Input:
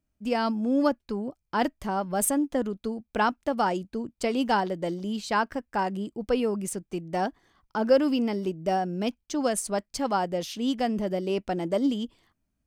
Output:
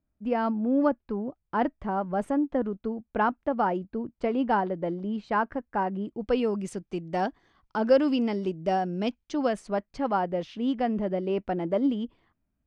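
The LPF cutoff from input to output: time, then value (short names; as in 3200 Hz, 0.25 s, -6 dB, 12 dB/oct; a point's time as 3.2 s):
5.96 s 1700 Hz
6.42 s 4700 Hz
9.09 s 4700 Hz
9.82 s 2200 Hz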